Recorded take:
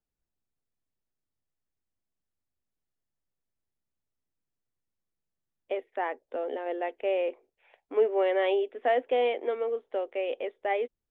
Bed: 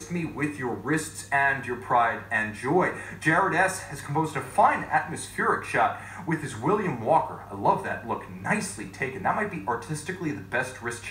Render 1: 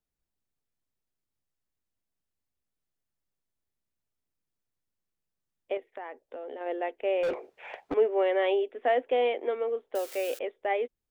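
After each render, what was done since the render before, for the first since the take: 5.77–6.61 compressor, threshold -36 dBFS; 7.23–7.94 overdrive pedal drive 33 dB, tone 1100 Hz, clips at -21 dBFS; 9.95–10.39 switching spikes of -30 dBFS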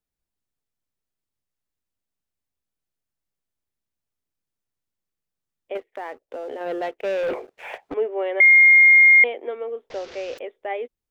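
5.75–7.78 sample leveller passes 2; 8.4–9.24 bleep 2130 Hz -8.5 dBFS; 9.9–10.38 delta modulation 32 kbps, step -36 dBFS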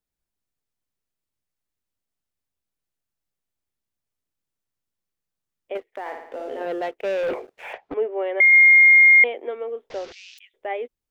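6–6.66 flutter echo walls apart 9.6 m, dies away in 0.71 s; 7.73–8.53 air absorption 140 m; 10.12–10.54 inverse Chebyshev high-pass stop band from 580 Hz, stop band 70 dB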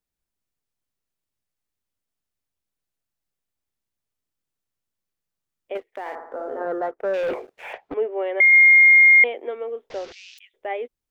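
6.15–7.14 resonant high shelf 1900 Hz -11.5 dB, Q 3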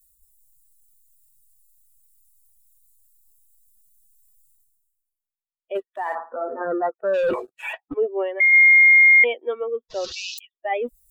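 per-bin expansion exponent 2; reverse; upward compressor, threshold -15 dBFS; reverse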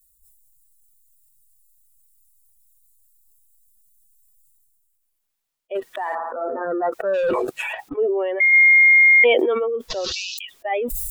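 sustainer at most 22 dB/s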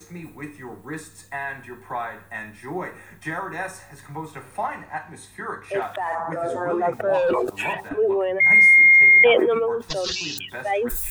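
add bed -7.5 dB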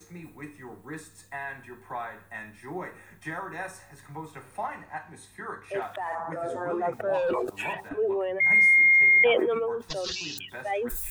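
gain -6 dB

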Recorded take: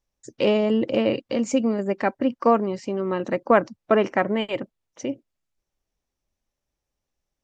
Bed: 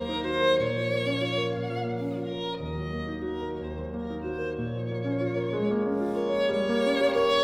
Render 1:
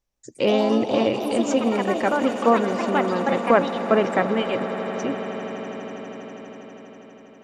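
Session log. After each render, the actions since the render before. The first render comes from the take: echoes that change speed 0.163 s, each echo +4 st, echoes 3, each echo -6 dB; on a send: swelling echo 81 ms, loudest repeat 8, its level -17.5 dB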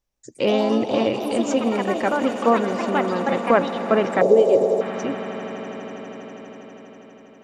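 4.21–4.81 EQ curve 170 Hz 0 dB, 240 Hz -4 dB, 420 Hz +13 dB, 600 Hz +9 dB, 980 Hz -5 dB, 1400 Hz -16 dB, 3300 Hz -8 dB, 6600 Hz +11 dB, 11000 Hz +5 dB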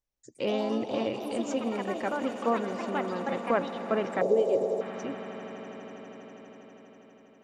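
gain -9.5 dB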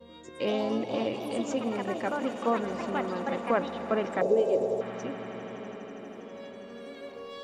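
add bed -19.5 dB

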